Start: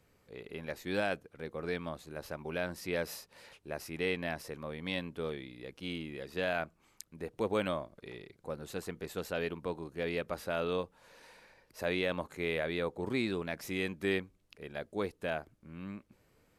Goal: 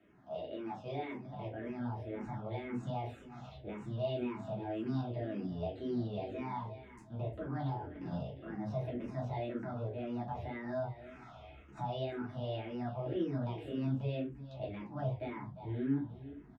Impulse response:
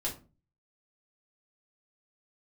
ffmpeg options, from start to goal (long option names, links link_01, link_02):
-filter_complex "[0:a]lowpass=1300,bandreject=frequency=370:width=12,asetrate=62367,aresample=44100,atempo=0.707107,asplit=2[link_01][link_02];[link_02]acompressor=threshold=-47dB:ratio=6,volume=3dB[link_03];[link_01][link_03]amix=inputs=2:normalize=0,alimiter=level_in=7.5dB:limit=-24dB:level=0:latency=1:release=21,volume=-7.5dB,highpass=93,aecho=1:1:351|702|1053:0.224|0.0649|0.0188[link_04];[1:a]atrim=start_sample=2205,afade=type=out:start_time=0.16:duration=0.01,atrim=end_sample=7497[link_05];[link_04][link_05]afir=irnorm=-1:irlink=0,acrossover=split=150[link_06][link_07];[link_06]dynaudnorm=framelen=130:gausssize=17:maxgain=16dB[link_08];[link_08][link_07]amix=inputs=2:normalize=0,asplit=2[link_09][link_10];[link_10]afreqshift=-1.9[link_11];[link_09][link_11]amix=inputs=2:normalize=1,volume=-2dB"